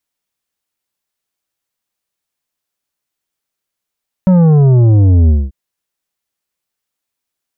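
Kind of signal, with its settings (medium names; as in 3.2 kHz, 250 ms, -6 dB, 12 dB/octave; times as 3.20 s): sub drop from 190 Hz, over 1.24 s, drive 9 dB, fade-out 0.22 s, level -6 dB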